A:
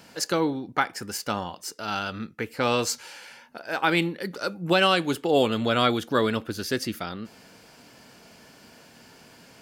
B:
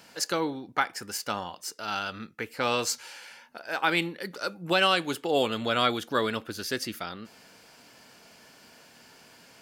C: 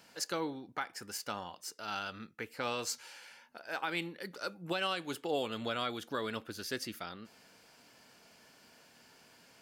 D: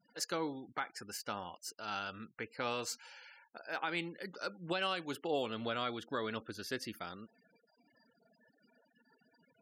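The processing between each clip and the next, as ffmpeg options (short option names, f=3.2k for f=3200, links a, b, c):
-af "lowshelf=f=450:g=-7,volume=-1dB"
-af "alimiter=limit=-15.5dB:level=0:latency=1:release=211,volume=-7dB"
-af "afftfilt=real='re*gte(hypot(re,im),0.00251)':imag='im*gte(hypot(re,im),0.00251)':win_size=1024:overlap=0.75,adynamicequalizer=threshold=0.00251:dfrequency=3700:dqfactor=0.7:tfrequency=3700:tqfactor=0.7:attack=5:release=100:ratio=0.375:range=2.5:mode=cutabove:tftype=highshelf,volume=-1dB"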